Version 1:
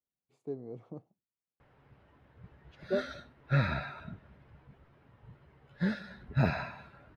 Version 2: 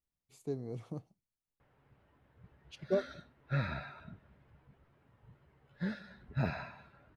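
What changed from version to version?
speech: remove resonant band-pass 460 Hz, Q 0.57
background −6.0 dB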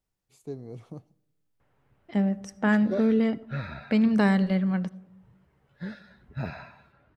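first voice: send on
second voice: unmuted

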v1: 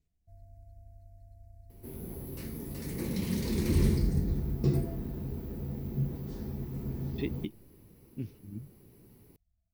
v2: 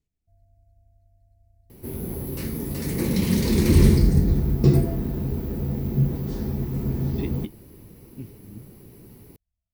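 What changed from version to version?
first sound −6.5 dB
second sound +10.5 dB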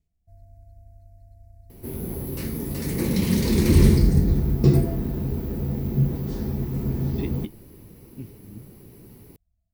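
first sound +10.5 dB

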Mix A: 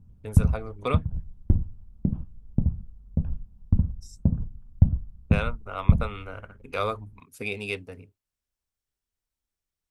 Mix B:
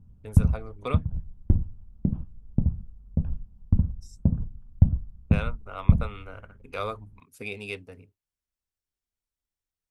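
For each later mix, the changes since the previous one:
speech −4.0 dB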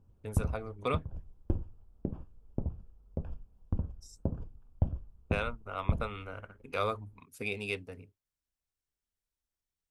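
background: add low shelf with overshoot 280 Hz −10.5 dB, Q 1.5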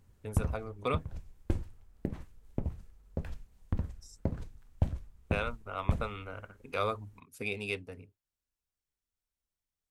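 background: remove moving average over 22 samples

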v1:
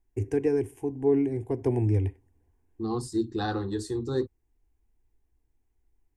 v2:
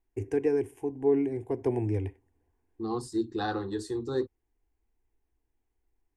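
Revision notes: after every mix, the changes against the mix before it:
master: add bass and treble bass −7 dB, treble −4 dB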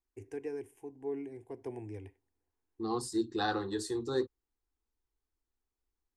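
first voice −11.0 dB
master: add spectral tilt +1.5 dB per octave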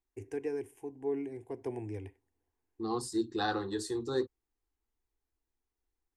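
first voice +3.5 dB

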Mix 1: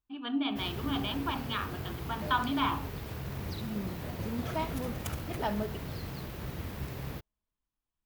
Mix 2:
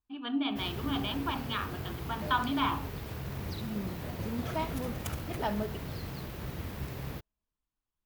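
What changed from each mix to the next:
nothing changed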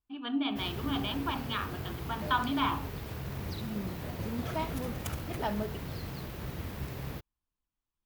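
reverb: off

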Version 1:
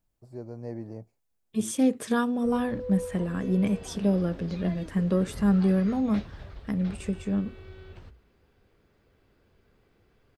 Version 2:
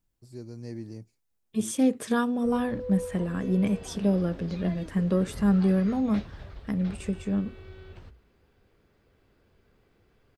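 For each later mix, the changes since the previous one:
first voice: add drawn EQ curve 330 Hz 0 dB, 650 Hz −13 dB, 3,800 Hz +11 dB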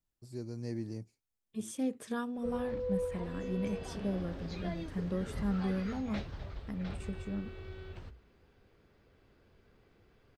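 second voice −11.0 dB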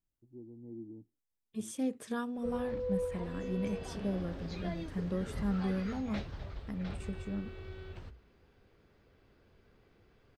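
first voice: add formant resonators in series u

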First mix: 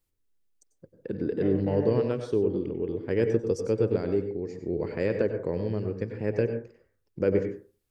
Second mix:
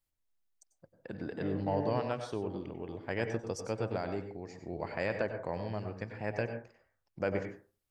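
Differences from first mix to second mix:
first voice: add low shelf with overshoot 560 Hz −7.5 dB, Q 3
second voice −5.0 dB

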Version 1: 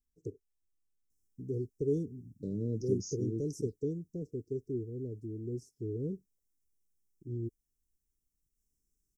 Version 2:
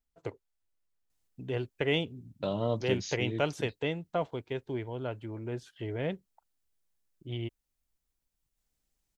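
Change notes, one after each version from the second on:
master: remove Chebyshev band-stop filter 440–5,400 Hz, order 5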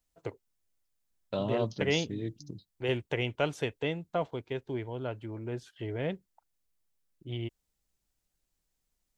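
second voice: entry −1.10 s

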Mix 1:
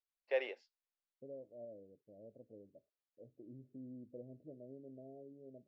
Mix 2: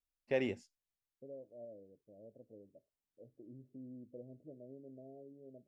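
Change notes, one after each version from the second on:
first voice: remove elliptic band-pass filter 480–4,500 Hz, stop band 50 dB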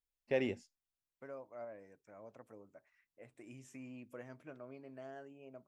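second voice: remove Butterworth low-pass 590 Hz 48 dB per octave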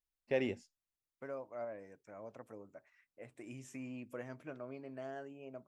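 second voice +4.5 dB

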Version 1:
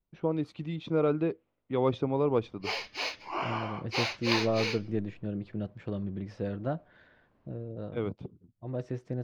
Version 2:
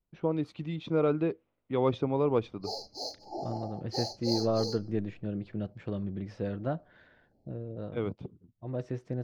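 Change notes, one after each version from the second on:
background: add linear-phase brick-wall band-stop 880–4,000 Hz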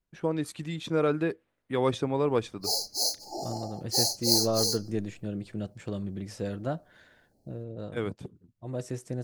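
first voice: add parametric band 1,700 Hz +10.5 dB 0.37 octaves
master: remove high-frequency loss of the air 260 metres

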